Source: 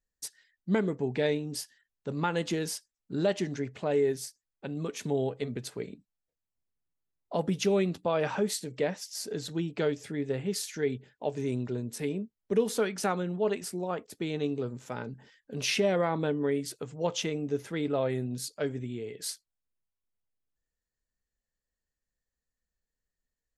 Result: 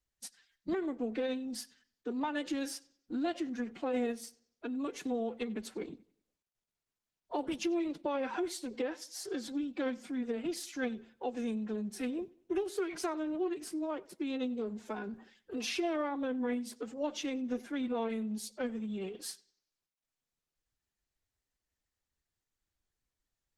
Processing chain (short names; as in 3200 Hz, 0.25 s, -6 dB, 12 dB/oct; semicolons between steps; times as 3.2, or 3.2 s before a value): high shelf 7400 Hz -7.5 dB; compressor 2.5:1, threshold -32 dBFS, peak gain reduction 8.5 dB; formant-preserving pitch shift +9.5 st; analogue delay 94 ms, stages 4096, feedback 35%, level -22.5 dB; Opus 20 kbps 48000 Hz